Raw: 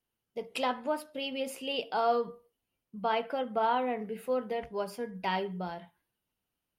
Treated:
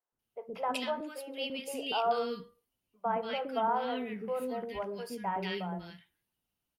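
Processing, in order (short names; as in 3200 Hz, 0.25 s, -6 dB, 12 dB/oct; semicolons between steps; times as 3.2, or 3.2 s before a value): 0.88–1.38 HPF 280 Hz 24 dB/oct; three bands offset in time mids, lows, highs 0.12/0.19 s, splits 460/1600 Hz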